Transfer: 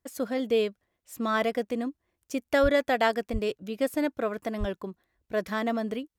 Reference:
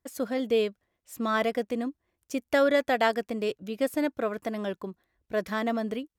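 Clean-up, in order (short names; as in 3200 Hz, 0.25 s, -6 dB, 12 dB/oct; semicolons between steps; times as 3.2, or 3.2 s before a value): 2.62–2.74 HPF 140 Hz 24 dB/oct; 3.32–3.44 HPF 140 Hz 24 dB/oct; 4.59–4.71 HPF 140 Hz 24 dB/oct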